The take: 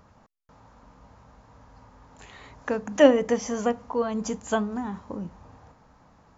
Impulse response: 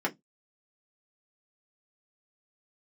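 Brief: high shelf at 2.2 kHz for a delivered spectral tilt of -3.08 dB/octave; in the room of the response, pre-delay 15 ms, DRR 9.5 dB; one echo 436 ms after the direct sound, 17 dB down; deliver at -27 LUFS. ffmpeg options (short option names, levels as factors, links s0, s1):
-filter_complex "[0:a]highshelf=f=2200:g=-6.5,aecho=1:1:436:0.141,asplit=2[s0][s1];[1:a]atrim=start_sample=2205,adelay=15[s2];[s1][s2]afir=irnorm=-1:irlink=0,volume=0.126[s3];[s0][s3]amix=inputs=2:normalize=0,volume=0.794"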